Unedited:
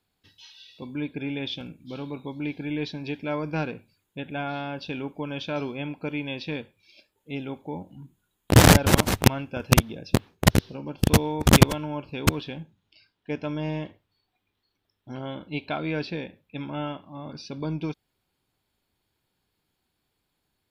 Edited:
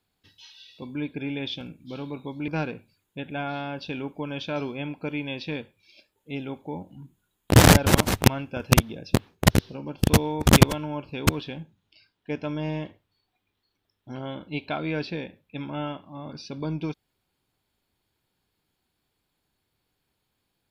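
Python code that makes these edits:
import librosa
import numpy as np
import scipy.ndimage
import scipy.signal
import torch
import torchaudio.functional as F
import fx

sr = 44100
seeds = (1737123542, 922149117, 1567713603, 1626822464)

y = fx.edit(x, sr, fx.cut(start_s=2.48, length_s=1.0), tone=tone)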